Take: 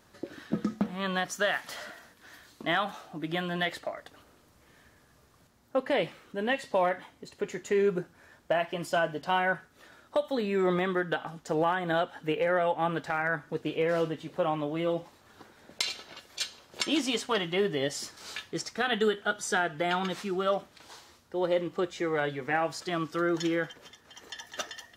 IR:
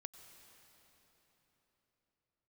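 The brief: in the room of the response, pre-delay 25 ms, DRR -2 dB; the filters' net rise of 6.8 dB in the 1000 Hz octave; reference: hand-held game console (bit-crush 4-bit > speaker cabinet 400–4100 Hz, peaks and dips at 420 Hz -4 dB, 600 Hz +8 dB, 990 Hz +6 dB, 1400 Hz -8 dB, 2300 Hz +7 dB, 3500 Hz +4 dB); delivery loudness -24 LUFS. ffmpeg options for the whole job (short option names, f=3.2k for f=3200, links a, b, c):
-filter_complex "[0:a]equalizer=f=1k:t=o:g=6,asplit=2[a][b];[1:a]atrim=start_sample=2205,adelay=25[c];[b][c]afir=irnorm=-1:irlink=0,volume=7.5dB[d];[a][d]amix=inputs=2:normalize=0,acrusher=bits=3:mix=0:aa=0.000001,highpass=400,equalizer=f=420:t=q:w=4:g=-4,equalizer=f=600:t=q:w=4:g=8,equalizer=f=990:t=q:w=4:g=6,equalizer=f=1.4k:t=q:w=4:g=-8,equalizer=f=2.3k:t=q:w=4:g=7,equalizer=f=3.5k:t=q:w=4:g=4,lowpass=f=4.1k:w=0.5412,lowpass=f=4.1k:w=1.3066,volume=-2dB"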